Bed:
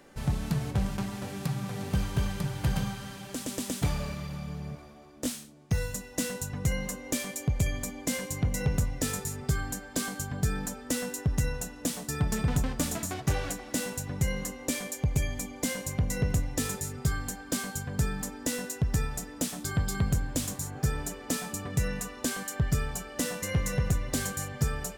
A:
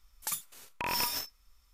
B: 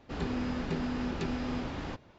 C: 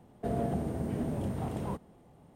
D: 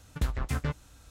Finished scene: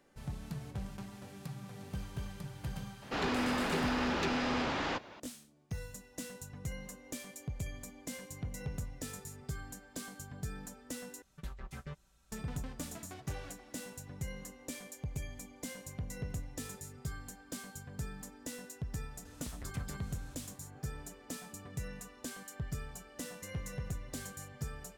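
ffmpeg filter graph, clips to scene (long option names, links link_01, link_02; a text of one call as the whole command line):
ffmpeg -i bed.wav -i cue0.wav -i cue1.wav -i cue2.wav -i cue3.wav -filter_complex "[4:a]asplit=2[link_01][link_02];[0:a]volume=-12.5dB[link_03];[2:a]asplit=2[link_04][link_05];[link_05]highpass=frequency=720:poles=1,volume=20dB,asoftclip=type=tanh:threshold=-20dB[link_06];[link_04][link_06]amix=inputs=2:normalize=0,lowpass=frequency=6600:poles=1,volume=-6dB[link_07];[link_01]aecho=1:1:5.2:0.87[link_08];[link_02]acompressor=threshold=-42dB:ratio=6:attack=3.2:release=140:knee=1:detection=peak[link_09];[link_03]asplit=2[link_10][link_11];[link_10]atrim=end=11.224[link_12];[link_08]atrim=end=1.1,asetpts=PTS-STARTPTS,volume=-16dB[link_13];[link_11]atrim=start=12.316[link_14];[link_07]atrim=end=2.18,asetpts=PTS-STARTPTS,volume=-3.5dB,afade=type=in:duration=0.004:curve=hsin,afade=type=out:start_time=2.176:duration=0.004:curve=hsin,adelay=3020[link_15];[link_09]atrim=end=1.1,asetpts=PTS-STARTPTS,volume=-1dB,afade=type=in:duration=0.004:curve=hsin,afade=type=out:start_time=1.096:duration=0.004:curve=hsin,adelay=19250[link_16];[link_12][link_13]acrossfade=duration=0.004:curve1=hsin:curve2=hsin[link_17];[link_17][link_14]acrossfade=duration=0.004:curve1=hsin:curve2=hsin[link_18];[link_18][link_15][link_16]amix=inputs=3:normalize=0" out.wav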